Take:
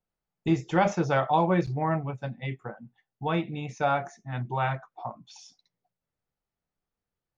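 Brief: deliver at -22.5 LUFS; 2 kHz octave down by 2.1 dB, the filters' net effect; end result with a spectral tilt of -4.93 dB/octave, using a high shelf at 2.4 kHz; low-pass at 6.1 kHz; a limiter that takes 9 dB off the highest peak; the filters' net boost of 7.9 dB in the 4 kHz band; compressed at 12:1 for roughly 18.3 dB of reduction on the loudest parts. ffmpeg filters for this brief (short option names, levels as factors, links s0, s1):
-af "lowpass=6100,equalizer=f=2000:t=o:g=-8.5,highshelf=f=2400:g=8.5,equalizer=f=4000:t=o:g=6,acompressor=threshold=0.0141:ratio=12,volume=13.3,alimiter=limit=0.237:level=0:latency=1"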